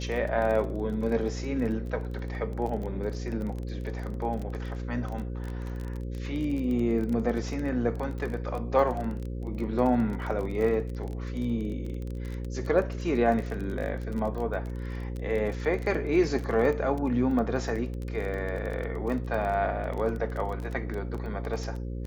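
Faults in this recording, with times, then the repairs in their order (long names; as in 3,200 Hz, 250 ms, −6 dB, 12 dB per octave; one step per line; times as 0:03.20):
mains buzz 60 Hz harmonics 9 −34 dBFS
surface crackle 23 per second −32 dBFS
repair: click removal
hum removal 60 Hz, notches 9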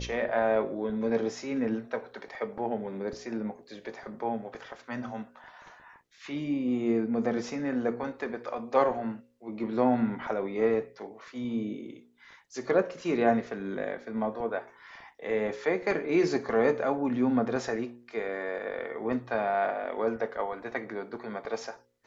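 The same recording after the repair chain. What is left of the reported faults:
none of them is left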